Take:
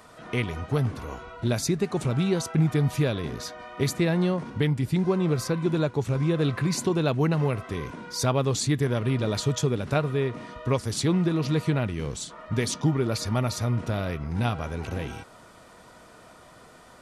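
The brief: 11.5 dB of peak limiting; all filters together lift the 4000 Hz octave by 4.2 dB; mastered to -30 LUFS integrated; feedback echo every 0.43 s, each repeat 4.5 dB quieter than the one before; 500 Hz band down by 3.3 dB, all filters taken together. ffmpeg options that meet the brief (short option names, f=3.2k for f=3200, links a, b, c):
-af "equalizer=f=500:t=o:g=-4.5,equalizer=f=4k:t=o:g=5,alimiter=limit=-22.5dB:level=0:latency=1,aecho=1:1:430|860|1290|1720|2150|2580|3010|3440|3870:0.596|0.357|0.214|0.129|0.0772|0.0463|0.0278|0.0167|0.01"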